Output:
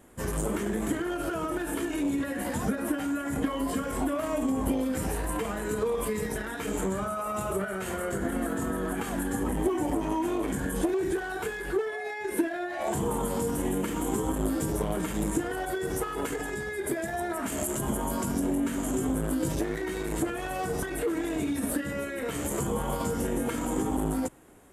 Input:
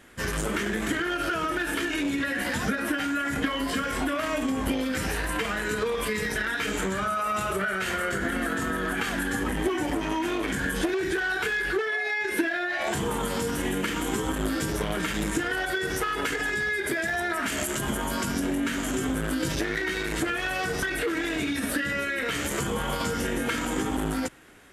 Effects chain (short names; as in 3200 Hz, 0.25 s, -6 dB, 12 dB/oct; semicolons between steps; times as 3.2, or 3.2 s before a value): band shelf 2800 Hz -11 dB 2.4 oct